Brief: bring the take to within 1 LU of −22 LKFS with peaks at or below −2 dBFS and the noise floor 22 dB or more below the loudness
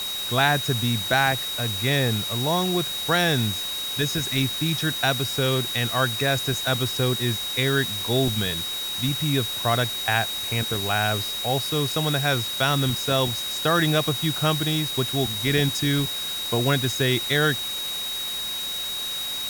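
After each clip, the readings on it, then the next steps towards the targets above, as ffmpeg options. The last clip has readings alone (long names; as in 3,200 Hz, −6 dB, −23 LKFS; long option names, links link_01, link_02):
interfering tone 3,800 Hz; level of the tone −28 dBFS; background noise floor −30 dBFS; target noise floor −45 dBFS; integrated loudness −23.0 LKFS; sample peak −6.5 dBFS; target loudness −22.0 LKFS
→ -af "bandreject=frequency=3800:width=30"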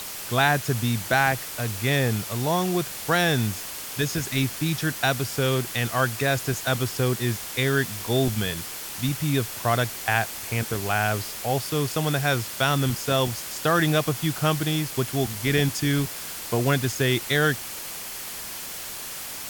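interfering tone none found; background noise floor −35 dBFS; target noise floor −47 dBFS
→ -af "afftdn=noise_reduction=12:noise_floor=-35"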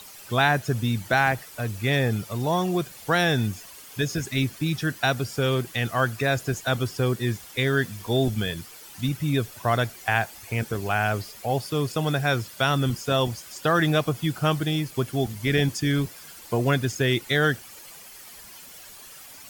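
background noise floor −45 dBFS; target noise floor −47 dBFS
→ -af "afftdn=noise_reduction=6:noise_floor=-45"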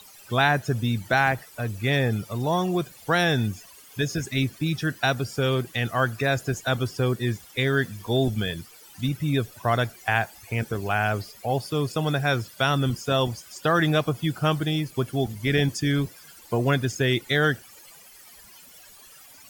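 background noise floor −49 dBFS; integrated loudness −25.0 LKFS; sample peak −7.5 dBFS; target loudness −22.0 LKFS
→ -af "volume=3dB"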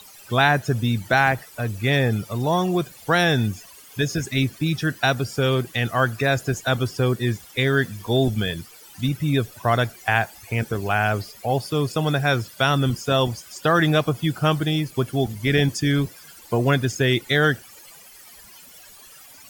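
integrated loudness −22.0 LKFS; sample peak −4.5 dBFS; background noise floor −46 dBFS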